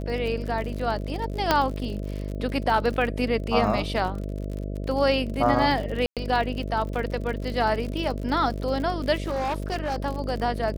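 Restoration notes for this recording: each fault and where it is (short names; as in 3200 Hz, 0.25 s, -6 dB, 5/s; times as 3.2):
buzz 50 Hz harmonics 13 -31 dBFS
crackle 57/s -31 dBFS
1.51 pop -5 dBFS
6.06–6.17 gap 0.107 s
9.22–9.96 clipped -23 dBFS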